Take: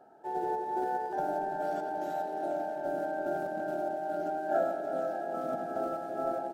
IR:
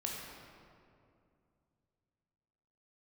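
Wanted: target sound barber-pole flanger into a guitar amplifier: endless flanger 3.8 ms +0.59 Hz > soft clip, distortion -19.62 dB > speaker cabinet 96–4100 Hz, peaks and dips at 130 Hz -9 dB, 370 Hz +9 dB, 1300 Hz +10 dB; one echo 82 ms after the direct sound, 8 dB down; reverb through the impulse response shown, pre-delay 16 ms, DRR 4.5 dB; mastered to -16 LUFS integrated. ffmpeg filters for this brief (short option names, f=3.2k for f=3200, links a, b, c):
-filter_complex "[0:a]aecho=1:1:82:0.398,asplit=2[a][b];[1:a]atrim=start_sample=2205,adelay=16[c];[b][c]afir=irnorm=-1:irlink=0,volume=-6dB[d];[a][d]amix=inputs=2:normalize=0,asplit=2[e][f];[f]adelay=3.8,afreqshift=0.59[g];[e][g]amix=inputs=2:normalize=1,asoftclip=threshold=-25dB,highpass=96,equalizer=f=130:t=q:w=4:g=-9,equalizer=f=370:t=q:w=4:g=9,equalizer=f=1.3k:t=q:w=4:g=10,lowpass=f=4.1k:w=0.5412,lowpass=f=4.1k:w=1.3066,volume=16dB"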